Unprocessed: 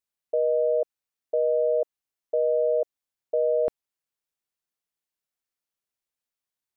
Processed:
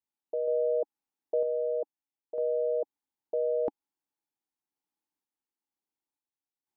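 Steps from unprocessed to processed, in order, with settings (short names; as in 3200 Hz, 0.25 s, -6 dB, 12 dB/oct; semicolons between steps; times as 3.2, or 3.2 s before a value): small resonant body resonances 290/830 Hz, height 16 dB, ringing for 25 ms; random-step tremolo 2.1 Hz, depth 65%; gain -6 dB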